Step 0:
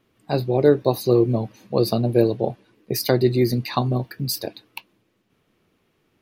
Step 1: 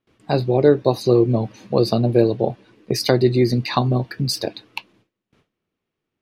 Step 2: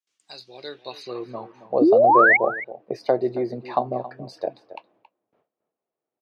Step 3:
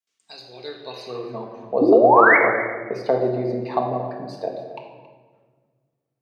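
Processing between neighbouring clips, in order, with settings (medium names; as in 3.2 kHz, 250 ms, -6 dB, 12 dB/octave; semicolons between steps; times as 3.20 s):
gate with hold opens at -54 dBFS; low-pass 7.6 kHz 12 dB/octave; in parallel at +1 dB: compression, threshold -27 dBFS, peak gain reduction 16.5 dB
band-pass sweep 6.9 kHz -> 660 Hz, 0.33–1.78 s; painted sound rise, 1.81–2.37 s, 270–2300 Hz -17 dBFS; echo from a far wall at 47 m, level -15 dB; trim +2.5 dB
simulated room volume 1300 m³, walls mixed, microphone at 1.6 m; trim -1 dB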